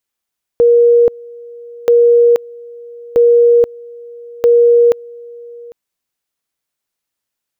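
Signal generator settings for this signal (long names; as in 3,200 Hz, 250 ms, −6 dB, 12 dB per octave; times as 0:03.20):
tone at two levels in turn 474 Hz −5 dBFS, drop 24.5 dB, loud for 0.48 s, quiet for 0.80 s, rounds 4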